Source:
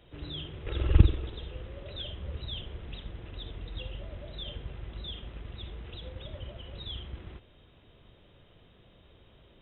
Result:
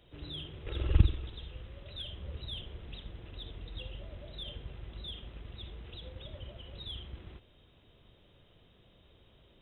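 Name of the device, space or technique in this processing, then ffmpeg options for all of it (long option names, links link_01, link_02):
exciter from parts: -filter_complex "[0:a]asettb=1/sr,asplit=3[link_01][link_02][link_03];[link_01]atrim=end=0.974[link_04];[link_02]atrim=start=0.97:end=2.12,asetpts=PTS-STARTPTS,afade=type=in:duration=0.004:curve=qsin,afade=type=out:start_time=1.146:duration=0.004:curve=qsin,equalizer=frequency=440:width_type=o:width=1.4:gain=-5.5[link_05];[link_03]atrim=start=2.116[link_06];[link_04][link_05]acrossfade=duration=0.004:curve1=hsin:curve2=qsin[link_07];[link_07][link_06]acrossfade=duration=0.004:curve1=qsin:curve2=hsin,asplit=2[link_08][link_09];[link_09]highpass=2600,asoftclip=type=tanh:threshold=-37dB,volume=-4dB[link_10];[link_08][link_10]amix=inputs=2:normalize=0,volume=-4dB"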